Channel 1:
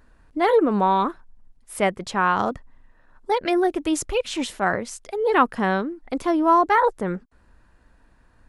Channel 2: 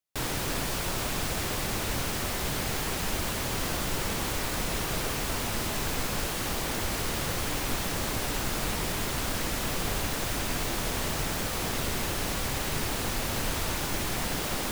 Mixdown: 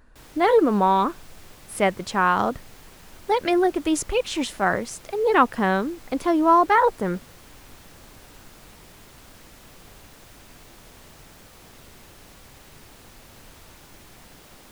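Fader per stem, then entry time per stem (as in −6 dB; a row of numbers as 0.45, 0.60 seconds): +0.5, −17.5 decibels; 0.00, 0.00 seconds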